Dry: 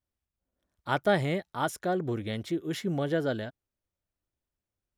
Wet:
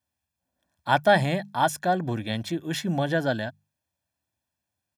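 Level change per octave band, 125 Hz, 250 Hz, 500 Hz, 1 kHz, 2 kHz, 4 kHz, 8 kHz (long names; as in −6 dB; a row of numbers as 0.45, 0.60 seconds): +4.5, +3.0, +4.0, +8.5, +7.5, +7.0, +7.0 decibels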